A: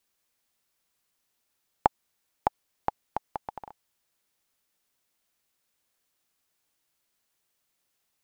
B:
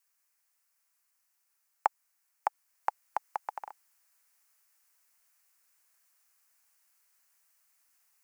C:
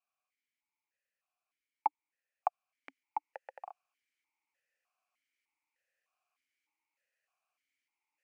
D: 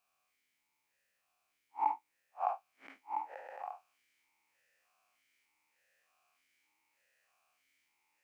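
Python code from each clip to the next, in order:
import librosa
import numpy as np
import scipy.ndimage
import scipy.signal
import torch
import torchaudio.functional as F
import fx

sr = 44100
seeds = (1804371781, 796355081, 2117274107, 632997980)

y1 = fx.peak_eq(x, sr, hz=3500.0, db=-12.5, octaves=0.67)
y1 = fx.rider(y1, sr, range_db=5, speed_s=0.5)
y1 = scipy.signal.sosfilt(scipy.signal.butter(2, 1100.0, 'highpass', fs=sr, output='sos'), y1)
y1 = y1 * 10.0 ** (2.5 / 20.0)
y2 = fx.vowel_held(y1, sr, hz=3.3)
y2 = y2 * 10.0 ** (6.5 / 20.0)
y3 = fx.spec_blur(y2, sr, span_ms=97.0)
y3 = y3 * 10.0 ** (12.0 / 20.0)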